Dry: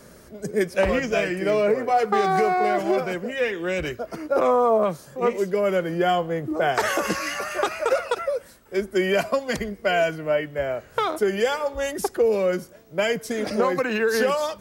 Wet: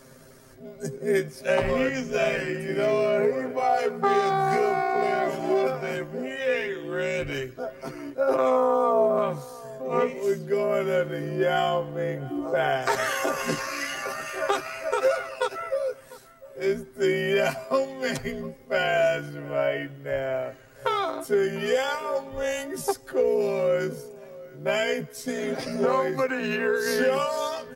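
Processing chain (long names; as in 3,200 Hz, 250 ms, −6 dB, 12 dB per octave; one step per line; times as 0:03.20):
time stretch by overlap-add 1.9×, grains 32 ms
slap from a distant wall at 120 metres, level −19 dB
level −1.5 dB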